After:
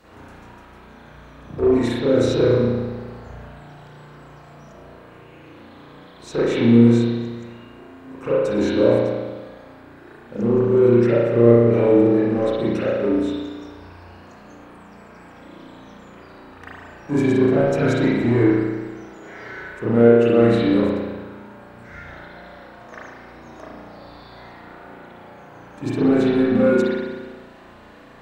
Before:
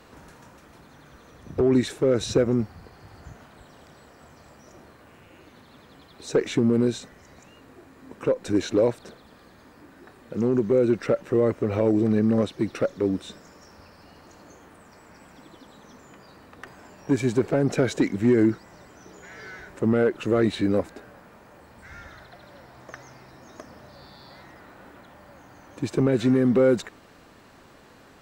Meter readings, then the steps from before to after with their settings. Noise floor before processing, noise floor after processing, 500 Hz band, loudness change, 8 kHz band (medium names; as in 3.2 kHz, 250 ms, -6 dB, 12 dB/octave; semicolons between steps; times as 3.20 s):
-52 dBFS, -45 dBFS, +6.0 dB, +5.5 dB, no reading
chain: in parallel at -7 dB: hard clipper -24 dBFS, distortion -7 dB; on the sum: spring tank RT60 1.4 s, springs 34 ms, chirp 30 ms, DRR -10 dB; trim -7 dB